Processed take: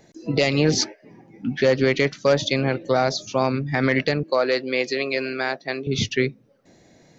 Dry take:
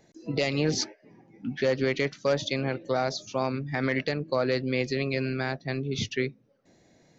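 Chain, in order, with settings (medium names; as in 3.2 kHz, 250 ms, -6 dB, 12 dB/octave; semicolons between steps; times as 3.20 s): 4.23–5.87 s: high-pass 380 Hz 12 dB/octave; trim +7 dB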